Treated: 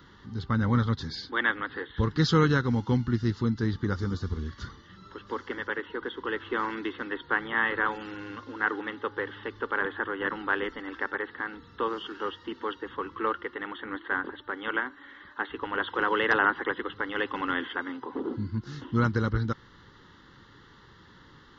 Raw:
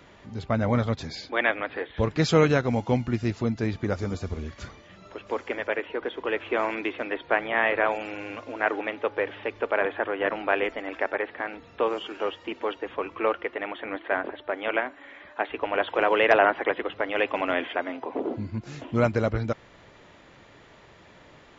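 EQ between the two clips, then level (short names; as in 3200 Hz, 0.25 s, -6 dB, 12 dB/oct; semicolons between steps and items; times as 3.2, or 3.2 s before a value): fixed phaser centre 2400 Hz, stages 6; +1.5 dB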